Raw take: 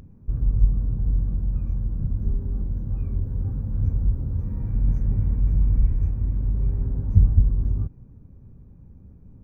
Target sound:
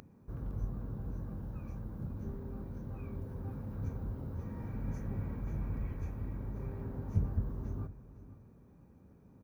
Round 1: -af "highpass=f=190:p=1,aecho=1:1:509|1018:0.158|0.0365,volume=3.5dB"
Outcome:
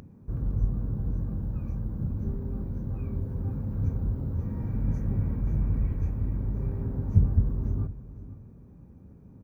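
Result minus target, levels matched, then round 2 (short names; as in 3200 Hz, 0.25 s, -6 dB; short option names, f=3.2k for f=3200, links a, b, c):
1000 Hz band -8.5 dB
-af "highpass=f=720:p=1,aecho=1:1:509|1018:0.158|0.0365,volume=3.5dB"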